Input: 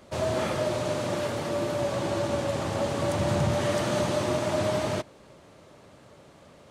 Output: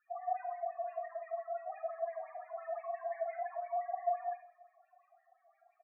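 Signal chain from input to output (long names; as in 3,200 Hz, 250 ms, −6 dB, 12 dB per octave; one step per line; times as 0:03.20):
EQ curve with evenly spaced ripples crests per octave 1.6, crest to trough 7 dB
change of speed 1.15×
LFO wah 5.8 Hz 650–2,300 Hz, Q 6.4
spectral peaks only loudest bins 4
repeating echo 172 ms, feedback 45%, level −23 dB
on a send at −5 dB: convolution reverb RT60 0.35 s, pre-delay 34 ms
on the sum: level −3 dB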